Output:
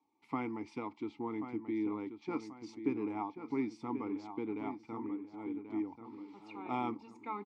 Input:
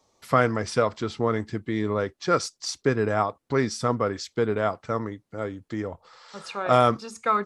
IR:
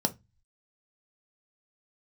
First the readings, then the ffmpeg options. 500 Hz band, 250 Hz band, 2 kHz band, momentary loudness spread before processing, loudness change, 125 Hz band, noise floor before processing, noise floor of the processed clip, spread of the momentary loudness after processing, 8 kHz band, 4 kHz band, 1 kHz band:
-18.5 dB, -7.0 dB, -19.0 dB, 12 LU, -14.0 dB, -21.5 dB, -75 dBFS, -65 dBFS, 7 LU, under -25 dB, under -20 dB, -16.0 dB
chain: -filter_complex "[0:a]asplit=3[a][b][c];[a]bandpass=f=300:t=q:w=8,volume=0dB[d];[b]bandpass=f=870:t=q:w=8,volume=-6dB[e];[c]bandpass=f=2.24k:t=q:w=8,volume=-9dB[f];[d][e][f]amix=inputs=3:normalize=0,asplit=2[g][h];[h]adelay=1085,lowpass=f=3.2k:p=1,volume=-9dB,asplit=2[i][j];[j]adelay=1085,lowpass=f=3.2k:p=1,volume=0.42,asplit=2[k][l];[l]adelay=1085,lowpass=f=3.2k:p=1,volume=0.42,asplit=2[m][n];[n]adelay=1085,lowpass=f=3.2k:p=1,volume=0.42,asplit=2[o][p];[p]adelay=1085,lowpass=f=3.2k:p=1,volume=0.42[q];[g][i][k][m][o][q]amix=inputs=6:normalize=0"

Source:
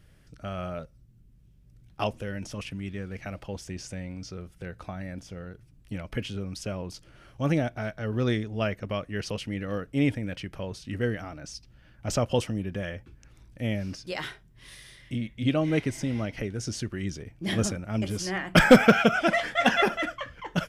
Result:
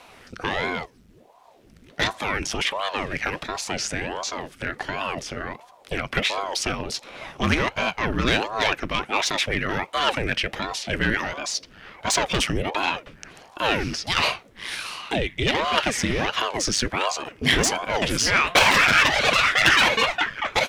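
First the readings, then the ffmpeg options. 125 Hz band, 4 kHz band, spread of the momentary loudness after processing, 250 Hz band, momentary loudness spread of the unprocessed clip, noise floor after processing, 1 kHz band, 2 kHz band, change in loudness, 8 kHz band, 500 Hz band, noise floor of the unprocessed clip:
-1.5 dB, +12.5 dB, 15 LU, -2.5 dB, 17 LU, -53 dBFS, +8.5 dB, +9.0 dB, +5.5 dB, +12.0 dB, +1.0 dB, -57 dBFS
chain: -filter_complex "[0:a]asplit=2[a][b];[b]highpass=f=720:p=1,volume=24dB,asoftclip=type=tanh:threshold=-6.5dB[c];[a][c]amix=inputs=2:normalize=0,lowpass=f=3.3k:p=1,volume=-6dB,highpass=f=51:w=0.5412,highpass=f=51:w=1.3066,afftfilt=real='re*lt(hypot(re,im),1.26)':imag='im*lt(hypot(re,im),1.26)':win_size=1024:overlap=0.75,acrossover=split=230|1200[d][e][f];[e]acompressor=threshold=-37dB:ratio=5[g];[d][g][f]amix=inputs=3:normalize=0,aeval=exprs='val(0)*sin(2*PI*470*n/s+470*0.9/1.4*sin(2*PI*1.4*n/s))':c=same,volume=5dB"

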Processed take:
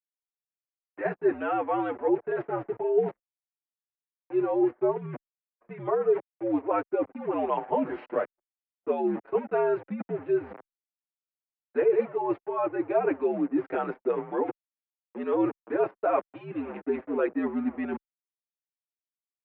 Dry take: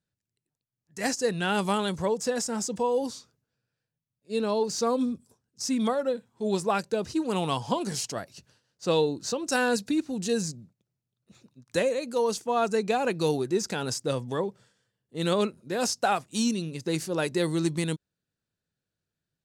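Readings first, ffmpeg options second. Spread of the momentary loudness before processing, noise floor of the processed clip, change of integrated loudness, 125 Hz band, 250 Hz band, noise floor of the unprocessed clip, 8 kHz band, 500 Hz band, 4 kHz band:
7 LU, under -85 dBFS, -0.5 dB, -10.0 dB, -1.0 dB, under -85 dBFS, under -40 dB, +1.5 dB, under -25 dB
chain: -filter_complex "[0:a]aemphasis=mode=reproduction:type=cd,aeval=exprs='val(0)*gte(abs(val(0)),0.0119)':c=same,areverse,acompressor=threshold=-34dB:ratio=5,areverse,equalizer=f=610:t=o:w=2.8:g=10.5,acontrast=31,highpass=f=340:t=q:w=0.5412,highpass=f=340:t=q:w=1.307,lowpass=f=2.5k:t=q:w=0.5176,lowpass=f=2.5k:t=q:w=0.7071,lowpass=f=2.5k:t=q:w=1.932,afreqshift=-84,anlmdn=0.0631,asplit=2[a][b];[b]adelay=7,afreqshift=-0.31[c];[a][c]amix=inputs=2:normalize=1"

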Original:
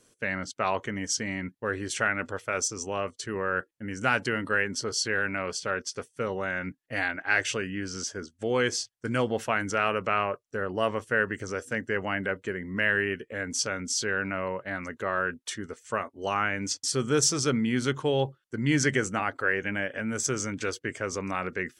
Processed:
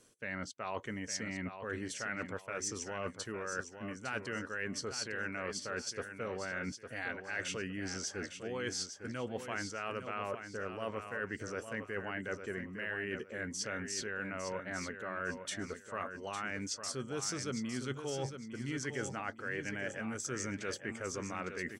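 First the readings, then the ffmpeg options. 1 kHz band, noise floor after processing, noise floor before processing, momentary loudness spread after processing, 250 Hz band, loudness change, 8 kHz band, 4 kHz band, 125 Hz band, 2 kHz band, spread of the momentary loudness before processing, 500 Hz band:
-11.5 dB, -52 dBFS, -71 dBFS, 3 LU, -9.5 dB, -10.5 dB, -9.5 dB, -9.5 dB, -10.0 dB, -11.0 dB, 7 LU, -10.5 dB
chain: -af "areverse,acompressor=threshold=-34dB:ratio=6,areverse,aecho=1:1:856|1712|2568:0.376|0.101|0.0274,volume=-2dB"

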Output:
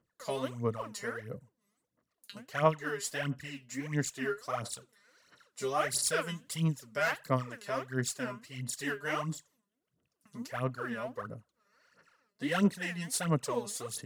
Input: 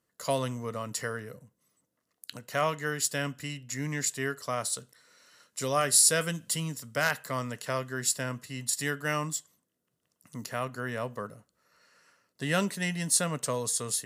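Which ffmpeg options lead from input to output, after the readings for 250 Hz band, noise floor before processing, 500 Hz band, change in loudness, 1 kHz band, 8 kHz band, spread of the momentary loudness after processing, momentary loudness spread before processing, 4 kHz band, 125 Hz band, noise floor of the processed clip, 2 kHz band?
0.0 dB, -80 dBFS, -2.0 dB, -4.5 dB, -2.0 dB, -10.5 dB, 14 LU, 12 LU, -6.5 dB, -1.0 dB, -84 dBFS, -3.5 dB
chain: -af "aemphasis=mode=reproduction:type=cd,aphaser=in_gain=1:out_gain=1:delay=5:decay=0.78:speed=1.5:type=sinusoidal,volume=-7dB"

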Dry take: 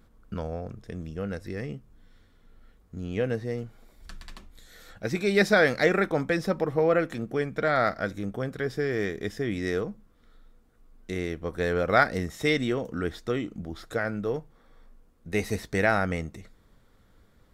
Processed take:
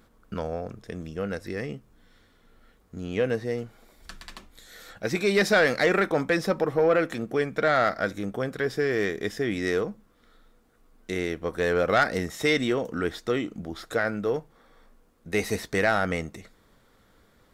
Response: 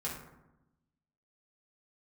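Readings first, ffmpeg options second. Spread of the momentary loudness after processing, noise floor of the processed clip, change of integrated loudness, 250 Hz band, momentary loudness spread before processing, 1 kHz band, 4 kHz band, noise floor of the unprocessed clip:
15 LU, -62 dBFS, +1.5 dB, +0.5 dB, 15 LU, +1.0 dB, +3.0 dB, -60 dBFS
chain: -filter_complex "[0:a]lowshelf=f=170:g=-10,asplit=2[a][b];[b]alimiter=limit=-16.5dB:level=0:latency=1,volume=-0.5dB[c];[a][c]amix=inputs=2:normalize=0,asoftclip=type=tanh:threshold=-11dB,volume=-1dB"

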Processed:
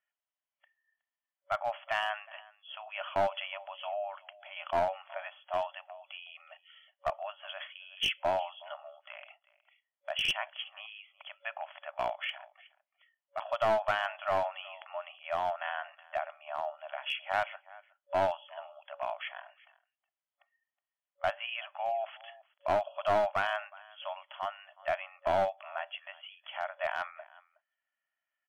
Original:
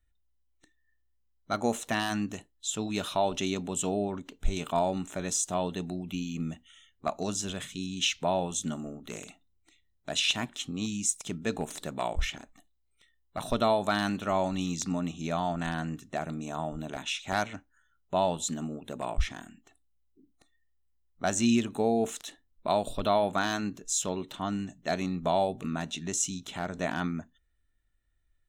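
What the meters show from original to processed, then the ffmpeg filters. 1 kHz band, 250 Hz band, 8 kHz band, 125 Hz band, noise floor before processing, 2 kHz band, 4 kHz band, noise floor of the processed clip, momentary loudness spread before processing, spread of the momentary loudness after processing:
-1.0 dB, -22.0 dB, -25.5 dB, -17.5 dB, -72 dBFS, 0.0 dB, -4.0 dB, under -85 dBFS, 10 LU, 17 LU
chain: -af "aecho=1:1:368:0.0794,afftfilt=real='re*between(b*sr/4096,560,3400)':imag='im*between(b*sr/4096,560,3400)':win_size=4096:overlap=0.75,aeval=exprs='clip(val(0),-1,0.0531)':c=same"

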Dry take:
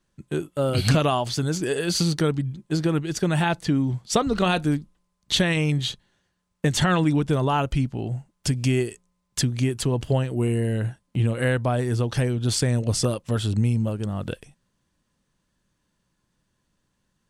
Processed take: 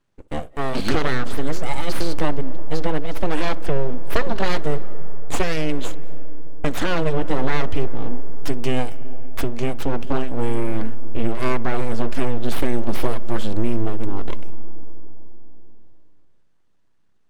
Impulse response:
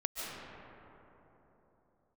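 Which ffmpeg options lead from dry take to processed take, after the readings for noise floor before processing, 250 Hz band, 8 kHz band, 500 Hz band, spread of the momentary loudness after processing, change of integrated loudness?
-74 dBFS, -2.0 dB, -9.0 dB, +0.5 dB, 10 LU, -2.5 dB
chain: -filter_complex "[0:a]aeval=exprs='abs(val(0))':c=same,highshelf=f=4.8k:g=-10.5,asplit=2[a][b];[1:a]atrim=start_sample=2205,highshelf=f=2k:g=-9.5,adelay=63[c];[b][c]afir=irnorm=-1:irlink=0,volume=-17dB[d];[a][d]amix=inputs=2:normalize=0,volume=2.5dB"

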